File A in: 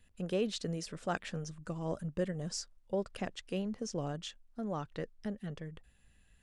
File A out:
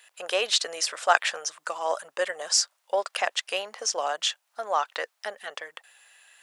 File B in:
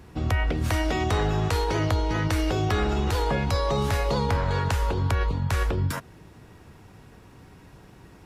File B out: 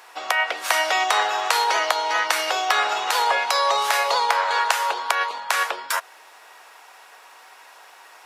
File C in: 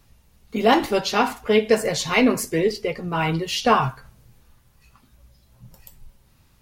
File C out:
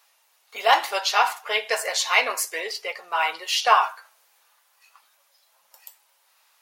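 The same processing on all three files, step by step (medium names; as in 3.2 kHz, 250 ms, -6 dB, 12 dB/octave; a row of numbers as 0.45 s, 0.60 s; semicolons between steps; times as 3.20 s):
high-pass 700 Hz 24 dB/octave; peak normalisation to -3 dBFS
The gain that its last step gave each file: +18.0 dB, +10.5 dB, +2.5 dB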